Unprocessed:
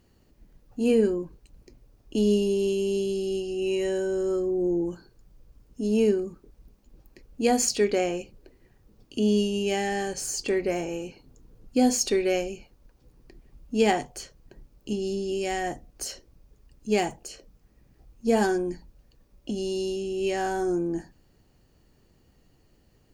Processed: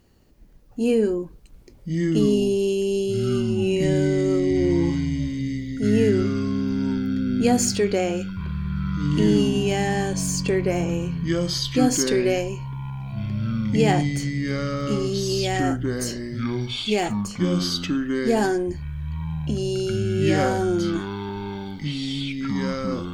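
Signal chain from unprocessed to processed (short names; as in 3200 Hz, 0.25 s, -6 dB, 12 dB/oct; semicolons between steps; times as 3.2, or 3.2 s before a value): in parallel at +0.5 dB: limiter -18 dBFS, peak gain reduction 8.5 dB; on the sum: echoes that change speed 0.762 s, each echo -6 st, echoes 3; gain -3 dB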